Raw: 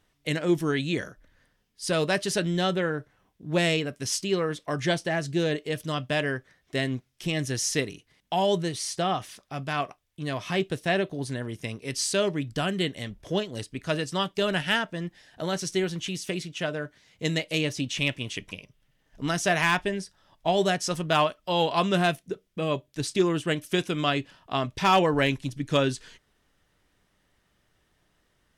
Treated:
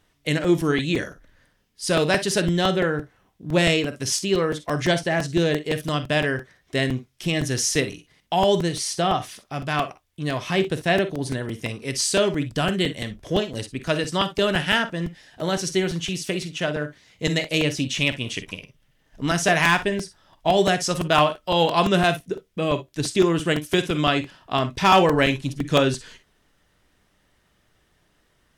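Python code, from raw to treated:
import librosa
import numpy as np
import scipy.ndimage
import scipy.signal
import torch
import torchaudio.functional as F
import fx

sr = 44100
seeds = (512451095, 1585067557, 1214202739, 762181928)

p1 = x + fx.room_early_taps(x, sr, ms=(47, 60), db=(-14.0, -15.0), dry=0)
p2 = fx.buffer_crackle(p1, sr, first_s=0.44, period_s=0.17, block=128, kind='repeat')
y = p2 * librosa.db_to_amplitude(4.5)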